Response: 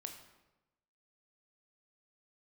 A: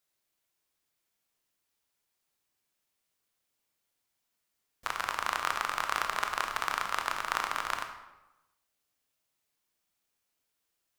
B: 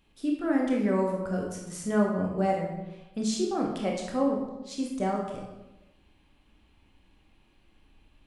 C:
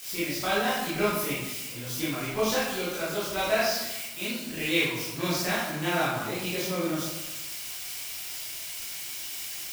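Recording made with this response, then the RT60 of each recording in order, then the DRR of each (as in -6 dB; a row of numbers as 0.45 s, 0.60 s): A; 1.0 s, 1.0 s, 1.0 s; 4.5 dB, -1.0 dB, -10.0 dB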